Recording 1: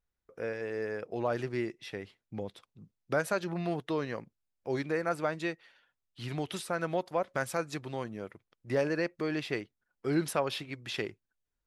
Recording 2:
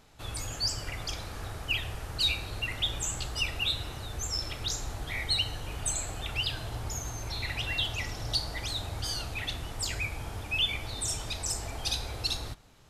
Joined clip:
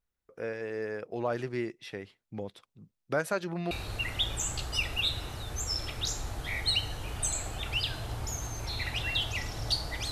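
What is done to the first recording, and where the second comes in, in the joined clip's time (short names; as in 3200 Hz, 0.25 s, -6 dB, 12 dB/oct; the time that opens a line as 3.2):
recording 1
3.71 switch to recording 2 from 2.34 s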